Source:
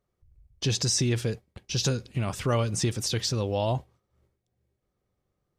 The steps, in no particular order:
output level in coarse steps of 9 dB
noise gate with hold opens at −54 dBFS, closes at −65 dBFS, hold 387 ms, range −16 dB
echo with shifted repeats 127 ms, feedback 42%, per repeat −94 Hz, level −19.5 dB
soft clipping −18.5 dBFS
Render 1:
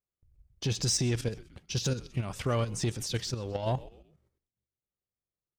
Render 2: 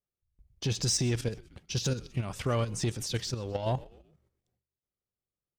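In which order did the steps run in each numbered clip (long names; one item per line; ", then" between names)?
noise gate with hold, then echo with shifted repeats, then soft clipping, then output level in coarse steps
soft clipping, then echo with shifted repeats, then output level in coarse steps, then noise gate with hold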